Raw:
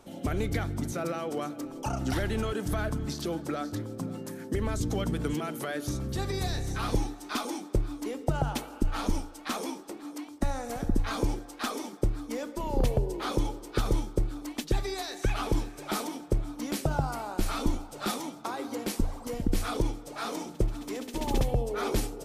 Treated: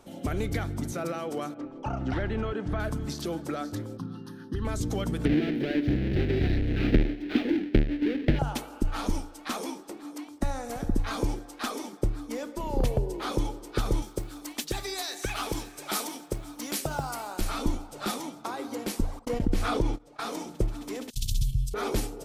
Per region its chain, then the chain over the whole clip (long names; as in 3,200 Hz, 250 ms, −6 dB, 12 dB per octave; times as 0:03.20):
0:01.54–0:02.80: downward expander −37 dBFS + low-pass filter 2,600 Hz + upward compression, threshold −36 dBFS
0:03.97–0:04.65: low-pass filter 8,200 Hz + phaser with its sweep stopped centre 2,200 Hz, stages 6
0:05.25–0:08.39: each half-wave held at its own peak + drawn EQ curve 150 Hz 0 dB, 320 Hz +7 dB, 730 Hz −9 dB, 1,100 Hz −22 dB, 1,700 Hz 0 dB, 2,500 Hz 0 dB, 4,100 Hz −6 dB, 7,500 Hz −28 dB, 13,000 Hz −25 dB
0:14.02–0:17.41: spectral tilt +2 dB per octave + floating-point word with a short mantissa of 4 bits
0:19.19–0:20.20: noise gate −36 dBFS, range −43 dB + high-shelf EQ 6,200 Hz −11 dB + envelope flattener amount 50%
0:21.10–0:21.74: noise gate −31 dBFS, range −43 dB + inverse Chebyshev band-stop filter 310–1,600 Hz, stop band 50 dB + envelope flattener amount 70%
whole clip: no processing